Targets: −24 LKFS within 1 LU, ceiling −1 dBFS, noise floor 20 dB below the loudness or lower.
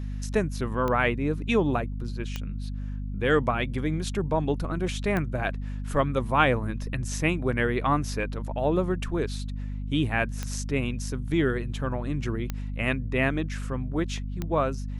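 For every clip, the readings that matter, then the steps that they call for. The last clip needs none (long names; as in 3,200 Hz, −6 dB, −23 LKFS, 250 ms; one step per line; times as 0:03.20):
number of clicks 6; mains hum 50 Hz; hum harmonics up to 250 Hz; level of the hum −30 dBFS; integrated loudness −28.0 LKFS; sample peak −6.5 dBFS; target loudness −24.0 LKFS
→ click removal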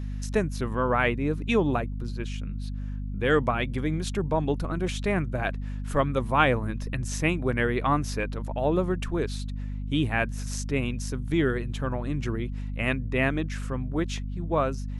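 number of clicks 0; mains hum 50 Hz; hum harmonics up to 250 Hz; level of the hum −30 dBFS
→ mains-hum notches 50/100/150/200/250 Hz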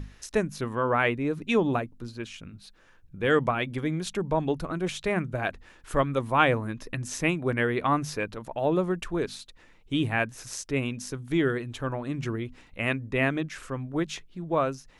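mains hum none found; integrated loudness −28.5 LKFS; sample peak −6.5 dBFS; target loudness −24.0 LKFS
→ level +4.5 dB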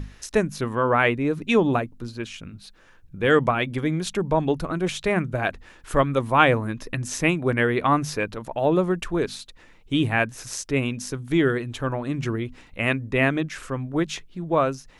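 integrated loudness −24.0 LKFS; sample peak −2.0 dBFS; background noise floor −52 dBFS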